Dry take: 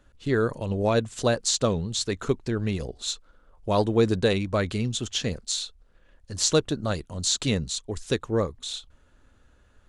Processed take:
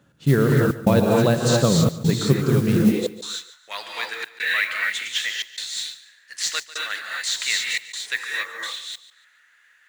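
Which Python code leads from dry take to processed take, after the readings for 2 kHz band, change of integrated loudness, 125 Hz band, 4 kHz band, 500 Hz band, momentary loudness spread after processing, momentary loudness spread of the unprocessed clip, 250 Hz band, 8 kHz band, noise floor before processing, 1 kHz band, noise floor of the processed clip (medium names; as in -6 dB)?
+11.5 dB, +4.5 dB, +6.5 dB, +3.5 dB, +1.5 dB, 14 LU, 9 LU, +6.0 dB, 0.0 dB, -60 dBFS, +2.5 dB, -58 dBFS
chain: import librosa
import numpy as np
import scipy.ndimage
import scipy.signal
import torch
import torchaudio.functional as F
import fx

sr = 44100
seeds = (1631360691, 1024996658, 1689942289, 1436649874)

p1 = fx.rev_gated(x, sr, seeds[0], gate_ms=300, shape='rising', drr_db=-1.5)
p2 = fx.filter_sweep_highpass(p1, sr, from_hz=150.0, to_hz=1900.0, start_s=2.79, end_s=3.41, q=5.2)
p3 = fx.step_gate(p2, sr, bpm=191, pattern='xxxxxxxxx..xxxx', floor_db=-60.0, edge_ms=4.5)
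p4 = fx.mod_noise(p3, sr, seeds[1], snr_db=22)
p5 = fx.dynamic_eq(p4, sr, hz=6700.0, q=0.72, threshold_db=-37.0, ratio=4.0, max_db=-5)
p6 = p5 + fx.echo_feedback(p5, sr, ms=145, feedback_pct=31, wet_db=-16.5, dry=0)
y = p6 * 10.0 ** (1.5 / 20.0)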